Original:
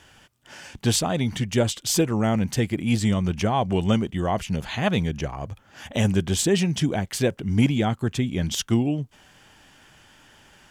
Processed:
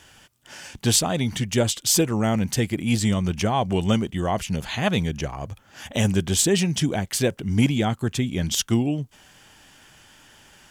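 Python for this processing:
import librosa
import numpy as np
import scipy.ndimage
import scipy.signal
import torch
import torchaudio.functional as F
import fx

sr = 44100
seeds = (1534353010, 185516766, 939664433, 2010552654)

y = fx.high_shelf(x, sr, hz=4300.0, db=6.5)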